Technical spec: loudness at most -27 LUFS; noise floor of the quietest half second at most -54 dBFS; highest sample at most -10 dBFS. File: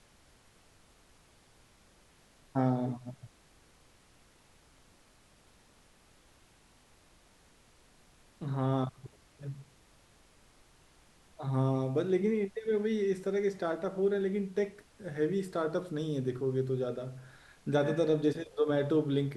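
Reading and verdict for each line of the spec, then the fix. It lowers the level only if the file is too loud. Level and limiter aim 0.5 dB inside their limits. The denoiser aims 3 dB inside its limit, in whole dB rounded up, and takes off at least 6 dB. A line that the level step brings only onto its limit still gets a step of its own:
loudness -32.5 LUFS: OK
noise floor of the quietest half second -63 dBFS: OK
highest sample -16.0 dBFS: OK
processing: none

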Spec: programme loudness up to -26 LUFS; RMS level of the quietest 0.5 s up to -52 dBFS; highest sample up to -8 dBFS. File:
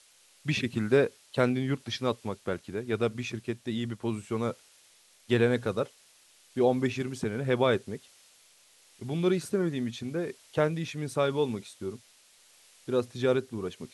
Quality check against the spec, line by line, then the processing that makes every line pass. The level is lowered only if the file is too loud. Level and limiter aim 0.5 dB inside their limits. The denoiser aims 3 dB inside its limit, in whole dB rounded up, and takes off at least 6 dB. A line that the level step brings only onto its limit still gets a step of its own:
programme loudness -30.0 LUFS: OK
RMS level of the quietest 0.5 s -61 dBFS: OK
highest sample -9.5 dBFS: OK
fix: none

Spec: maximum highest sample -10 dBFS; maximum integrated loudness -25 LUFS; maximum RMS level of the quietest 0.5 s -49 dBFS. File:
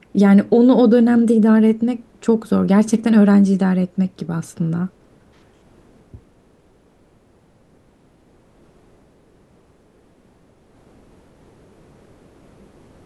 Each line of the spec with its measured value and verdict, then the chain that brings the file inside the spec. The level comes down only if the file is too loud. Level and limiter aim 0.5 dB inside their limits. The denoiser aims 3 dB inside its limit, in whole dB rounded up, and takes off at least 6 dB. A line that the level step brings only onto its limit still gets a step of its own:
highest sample -4.0 dBFS: fail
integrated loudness -15.5 LUFS: fail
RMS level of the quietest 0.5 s -54 dBFS: OK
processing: gain -10 dB

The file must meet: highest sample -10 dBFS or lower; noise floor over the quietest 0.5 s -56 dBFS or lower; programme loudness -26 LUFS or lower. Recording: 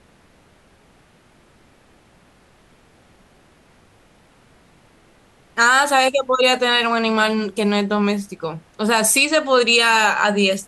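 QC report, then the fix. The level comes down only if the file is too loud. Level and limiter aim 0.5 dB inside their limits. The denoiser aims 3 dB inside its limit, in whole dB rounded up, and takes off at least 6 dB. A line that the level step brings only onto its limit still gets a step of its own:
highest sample -4.5 dBFS: fail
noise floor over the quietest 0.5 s -54 dBFS: fail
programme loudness -16.5 LUFS: fail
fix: gain -10 dB

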